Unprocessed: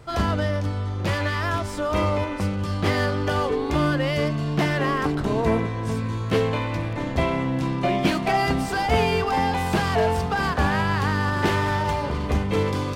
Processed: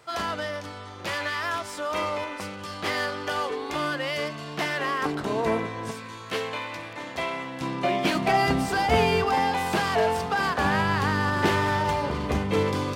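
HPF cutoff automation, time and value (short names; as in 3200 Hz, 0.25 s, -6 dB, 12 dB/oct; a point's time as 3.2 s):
HPF 6 dB/oct
890 Hz
from 5.02 s 410 Hz
from 5.91 s 1200 Hz
from 7.61 s 380 Hz
from 8.15 s 96 Hz
from 9.35 s 340 Hz
from 10.65 s 130 Hz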